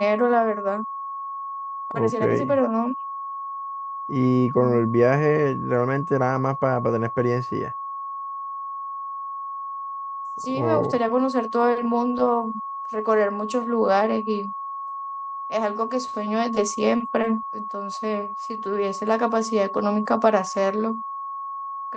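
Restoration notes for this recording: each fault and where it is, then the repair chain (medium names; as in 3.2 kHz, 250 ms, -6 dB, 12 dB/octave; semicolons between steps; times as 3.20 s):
whine 1.1 kHz -29 dBFS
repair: band-stop 1.1 kHz, Q 30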